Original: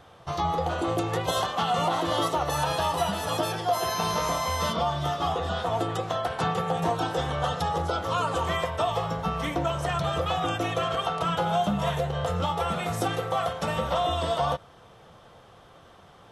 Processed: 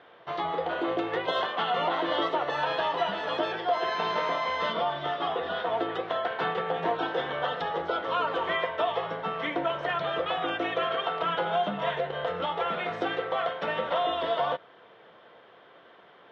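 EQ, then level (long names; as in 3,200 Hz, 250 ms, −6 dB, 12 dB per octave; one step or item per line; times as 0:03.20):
loudspeaker in its box 430–3,000 Hz, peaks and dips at 550 Hz −4 dB, 800 Hz −9 dB, 1,200 Hz −8 dB, 2,600 Hz −5 dB
+5.0 dB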